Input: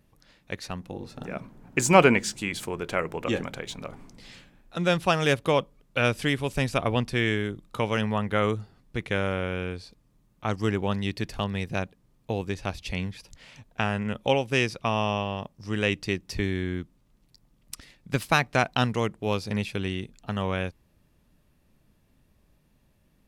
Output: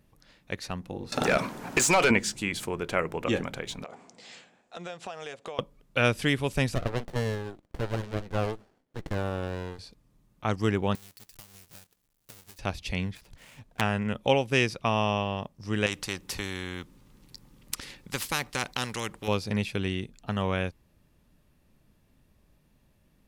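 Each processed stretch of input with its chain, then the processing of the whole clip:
0:01.12–0:02.11: bass and treble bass −1 dB, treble +9 dB + downward compressor 12 to 1, threshold −28 dBFS + mid-hump overdrive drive 27 dB, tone 4,200 Hz, clips at −10.5 dBFS
0:03.84–0:05.59: loudspeaker in its box 270–8,400 Hz, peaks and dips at 300 Hz −6 dB, 500 Hz +4 dB, 710 Hz +7 dB, 7,300 Hz +7 dB + notch filter 560 Hz, Q 15 + downward compressor 5 to 1, threshold −37 dBFS
0:06.75–0:09.79: high-pass filter 420 Hz + windowed peak hold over 33 samples
0:10.95–0:12.59: each half-wave held at its own peak + first-order pre-emphasis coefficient 0.9 + downward compressor 3 to 1, threshold −50 dBFS
0:13.15–0:13.81: gap after every zero crossing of 0.1 ms + highs frequency-modulated by the lows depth 0.44 ms
0:15.86–0:19.28: Butterworth band-reject 660 Hz, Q 5.1 + every bin compressed towards the loudest bin 2 to 1
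whole clip: no processing

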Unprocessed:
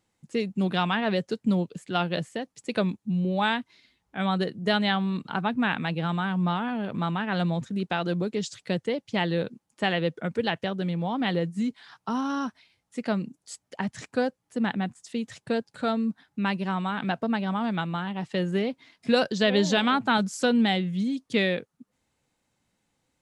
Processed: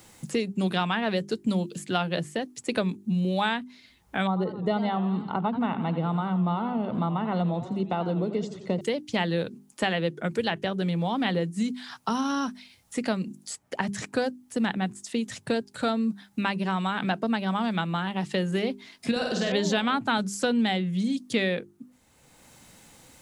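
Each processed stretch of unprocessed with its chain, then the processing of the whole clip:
0:04.27–0:08.81: Savitzky-Golay smoothing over 65 samples + feedback echo with a swinging delay time 87 ms, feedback 56%, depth 157 cents, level −13 dB
0:19.11–0:19.52: downward compressor 2.5 to 1, threshold −29 dBFS + flutter between parallel walls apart 8.5 metres, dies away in 0.9 s
whole clip: high-shelf EQ 8,100 Hz +10 dB; mains-hum notches 50/100/150/200/250/300/350/400 Hz; multiband upward and downward compressor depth 70%

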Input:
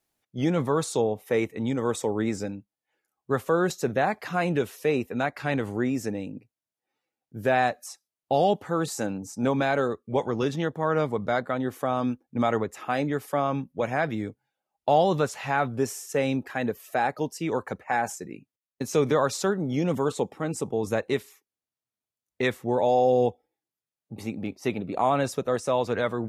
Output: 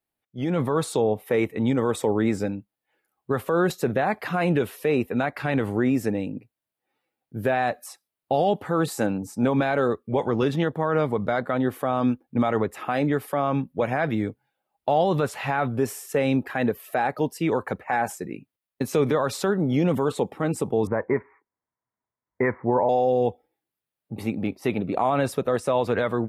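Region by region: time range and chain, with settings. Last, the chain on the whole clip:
0:20.87–0:22.89: Butterworth low-pass 2,200 Hz 96 dB per octave + parametric band 980 Hz +12 dB 0.2 octaves
whole clip: parametric band 6,300 Hz −10.5 dB 0.81 octaves; brickwall limiter −18 dBFS; automatic gain control gain up to 12.5 dB; level −7 dB

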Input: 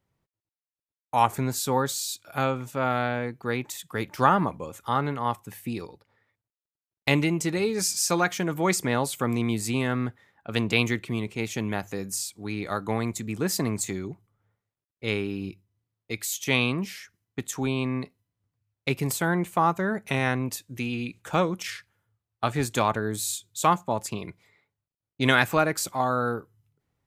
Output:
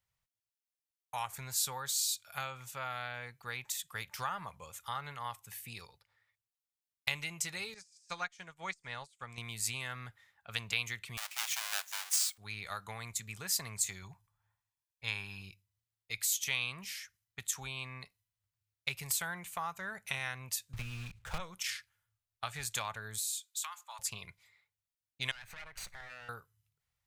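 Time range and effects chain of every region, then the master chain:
0:07.74–0:09.38: de-essing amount 60% + low-pass filter 8,800 Hz 24 dB per octave + expander for the loud parts 2.5 to 1, over −38 dBFS
0:11.17–0:12.38: each half-wave held at its own peak + high-pass filter 860 Hz 24 dB per octave + frequency shifter −110 Hz
0:14.02–0:15.42: parametric band 990 Hz +8.5 dB 0.56 octaves + comb filter 1.2 ms, depth 43%
0:20.73–0:21.40: one scale factor per block 3 bits + RIAA equalisation playback + multiband upward and downward compressor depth 40%
0:23.18–0:23.99: high-pass filter 1,000 Hz 24 dB per octave + downward compressor 16 to 1, threshold −31 dBFS
0:25.31–0:26.29: lower of the sound and its delayed copy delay 0.48 ms + low-pass filter 2,300 Hz 6 dB per octave + downward compressor 12 to 1, threshold −35 dBFS
whole clip: downward compressor 3 to 1, threshold −25 dBFS; guitar amp tone stack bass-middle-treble 10-0-10

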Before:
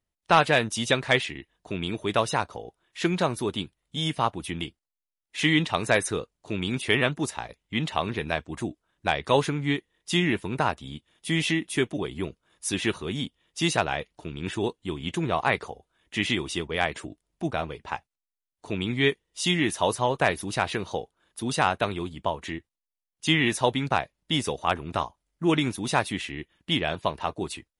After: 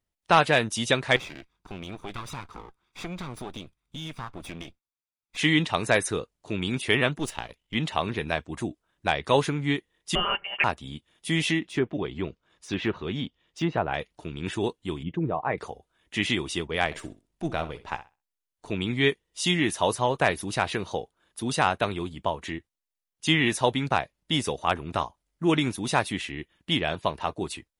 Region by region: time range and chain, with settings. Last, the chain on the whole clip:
0:01.16–0:05.37: lower of the sound and its delayed copy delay 0.84 ms + downward compressor 3 to 1, threshold −34 dBFS + high-shelf EQ 5,800 Hz −7.5 dB
0:07.19–0:07.75: gain on one half-wave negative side −7 dB + parametric band 3,000 Hz +9 dB 0.3 octaves
0:10.15–0:10.64: high-pass filter 410 Hz + comb filter 5 ms, depth 77% + voice inversion scrambler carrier 3,200 Hz
0:11.59–0:13.94: treble cut that deepens with the level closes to 1,200 Hz, closed at −20 dBFS + low-pass filter 6,100 Hz + de-essing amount 100%
0:15.03–0:15.58: spectral envelope exaggerated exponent 1.5 + head-to-tape spacing loss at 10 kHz 45 dB + comb filter 6.5 ms, depth 30%
0:16.85–0:18.71: gain on one half-wave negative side −3 dB + flutter between parallel walls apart 10.9 metres, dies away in 0.26 s
whole clip: no processing

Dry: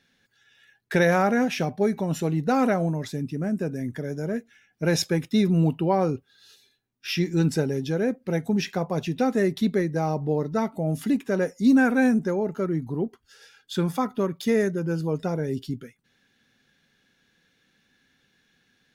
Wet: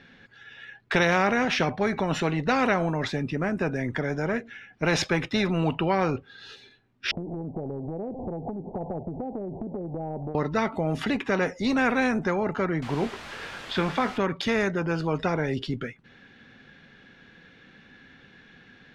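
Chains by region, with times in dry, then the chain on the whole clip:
0:07.11–0:10.35: converter with a step at zero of −37 dBFS + Butterworth low-pass 850 Hz 72 dB per octave + downward compressor 12 to 1, threshold −35 dBFS
0:12.82–0:14.18: low-pass filter 3,800 Hz + bit-depth reduction 8 bits, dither triangular + double-tracking delay 21 ms −10.5 dB
whole clip: low-pass filter 2,600 Hz 12 dB per octave; every bin compressed towards the loudest bin 2 to 1

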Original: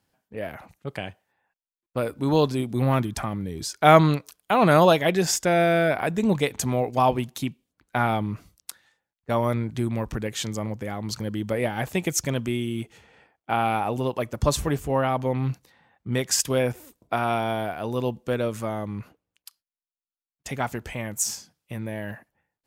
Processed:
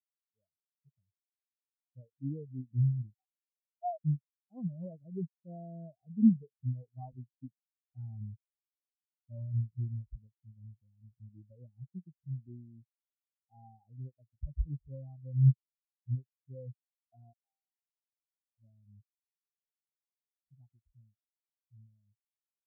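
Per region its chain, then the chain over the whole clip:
0:03.16–0:04.05: three sine waves on the formant tracks + downward compressor 2 to 1, threshold −36 dBFS + low shelf with overshoot 480 Hz −13 dB, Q 3
0:17.33–0:18.58: pair of resonant band-passes 2,200 Hz, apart 2.8 octaves + all-pass dispersion lows, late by 120 ms, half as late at 1,900 Hz
whole clip: spectral tilt −3.5 dB per octave; brickwall limiter −9 dBFS; every bin expanded away from the loudest bin 4 to 1; level −5 dB

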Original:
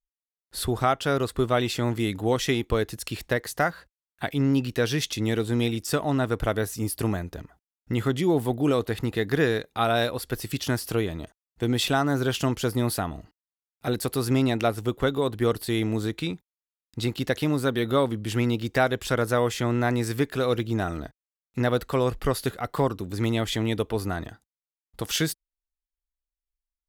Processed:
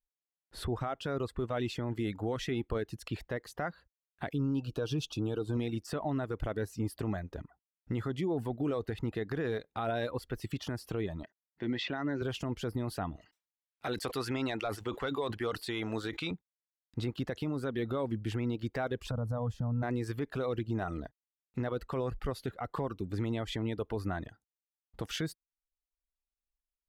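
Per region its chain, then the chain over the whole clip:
0:04.33–0:05.57: Butterworth band-reject 2,000 Hz, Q 1.8 + comb filter 6.5 ms, depth 33%
0:11.23–0:12.22: loudspeaker in its box 180–5,300 Hz, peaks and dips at 750 Hz −6 dB, 1,200 Hz −5 dB, 1,900 Hz +9 dB + notch filter 470 Hz, Q 8.2
0:13.16–0:16.31: tilt shelving filter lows −4 dB, about 1,400 Hz + mid-hump overdrive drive 11 dB, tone 5,500 Hz, clips at −9.5 dBFS + level that may fall only so fast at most 140 dB per second
0:19.11–0:19.83: phaser with its sweep stopped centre 890 Hz, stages 4 + downward compressor 5 to 1, threshold −28 dBFS + tilt shelving filter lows +9 dB, about 700 Hz
whole clip: low-pass filter 1,600 Hz 6 dB per octave; reverb reduction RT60 0.51 s; brickwall limiter −22.5 dBFS; level −2.5 dB

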